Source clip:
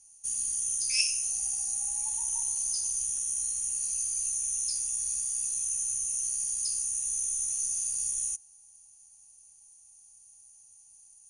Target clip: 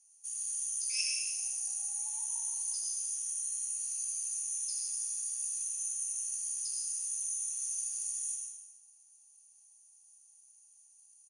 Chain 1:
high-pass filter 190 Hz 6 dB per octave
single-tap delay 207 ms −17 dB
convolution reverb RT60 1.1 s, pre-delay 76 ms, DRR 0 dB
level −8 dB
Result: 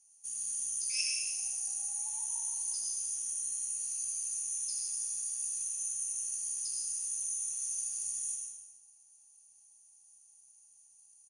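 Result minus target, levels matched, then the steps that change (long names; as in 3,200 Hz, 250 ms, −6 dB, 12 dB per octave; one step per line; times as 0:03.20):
250 Hz band +7.5 dB
change: high-pass filter 710 Hz 6 dB per octave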